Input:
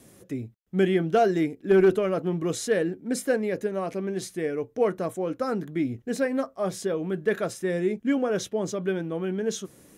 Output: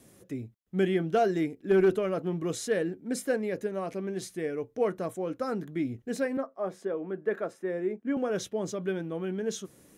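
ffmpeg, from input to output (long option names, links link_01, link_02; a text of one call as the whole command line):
ffmpeg -i in.wav -filter_complex "[0:a]asettb=1/sr,asplit=3[link_01][link_02][link_03];[link_01]atrim=end=6.374[link_04];[link_02]atrim=start=6.37:end=8.17,asetpts=PTS-STARTPTS,afade=type=in:duration=0.004:curve=qsin,afade=type=out:start_time=1.796:duration=0.004:curve=qsin,acrossover=split=200 2000:gain=0.0631 1 0.178[link_05][link_06][link_07];[link_05][link_06][link_07]amix=inputs=3:normalize=0[link_08];[link_03]atrim=start=8.166[link_09];[link_04][link_08]acrossfade=duration=0.004:curve1=hsin:curve2=qsin[link_10];[link_10][link_09]acrossfade=duration=0.004:curve1=qsin:curve2=hsin,volume=-4dB" out.wav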